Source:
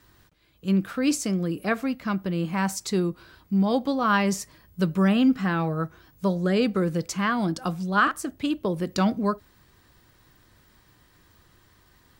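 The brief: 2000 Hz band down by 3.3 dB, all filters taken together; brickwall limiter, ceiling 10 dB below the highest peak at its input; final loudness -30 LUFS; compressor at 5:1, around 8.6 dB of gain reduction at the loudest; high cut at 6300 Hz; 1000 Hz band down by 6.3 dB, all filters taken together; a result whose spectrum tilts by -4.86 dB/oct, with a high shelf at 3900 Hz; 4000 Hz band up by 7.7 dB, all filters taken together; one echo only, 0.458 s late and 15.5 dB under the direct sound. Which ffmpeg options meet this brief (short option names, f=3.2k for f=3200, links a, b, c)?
-af "lowpass=6.3k,equalizer=f=1k:t=o:g=-8,equalizer=f=2k:t=o:g=-4.5,highshelf=f=3.9k:g=6.5,equalizer=f=4k:t=o:g=9,acompressor=threshold=-27dB:ratio=5,alimiter=limit=-23.5dB:level=0:latency=1,aecho=1:1:458:0.168,volume=3dB"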